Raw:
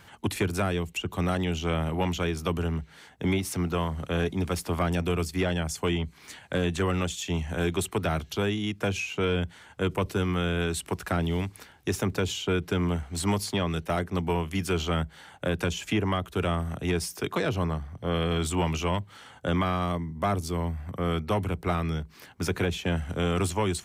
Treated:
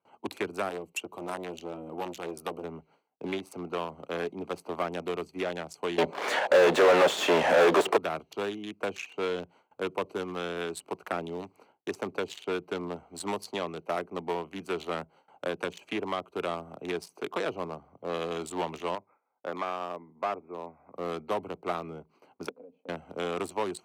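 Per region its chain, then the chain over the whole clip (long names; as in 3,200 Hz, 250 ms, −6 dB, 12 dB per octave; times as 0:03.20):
0:00.69–0:02.64: high-shelf EQ 8,000 Hz +12 dB + saturating transformer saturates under 510 Hz
0:05.98–0:07.97: parametric band 550 Hz +11.5 dB 0.78 octaves + mid-hump overdrive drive 36 dB, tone 1,200 Hz, clips at −10 dBFS
0:18.95–0:20.96: linear-phase brick-wall low-pass 2,600 Hz + low-shelf EQ 250 Hz −11.5 dB
0:22.49–0:22.89: pair of resonant band-passes 360 Hz, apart 0.94 octaves + downward compressor 5 to 1, threshold −42 dBFS
whole clip: adaptive Wiener filter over 25 samples; noise gate with hold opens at −47 dBFS; high-pass filter 390 Hz 12 dB per octave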